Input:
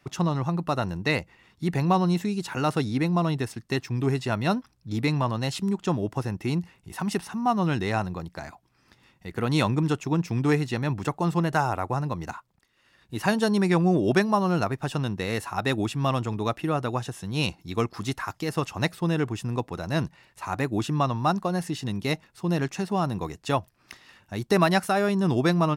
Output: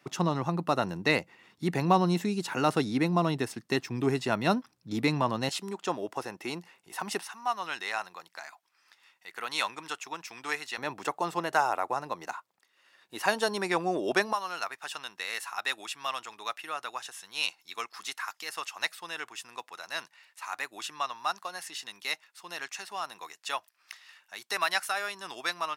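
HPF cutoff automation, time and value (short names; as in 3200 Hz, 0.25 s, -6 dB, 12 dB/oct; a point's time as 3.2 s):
200 Hz
from 5.49 s 470 Hz
from 7.23 s 1100 Hz
from 10.78 s 510 Hz
from 14.33 s 1300 Hz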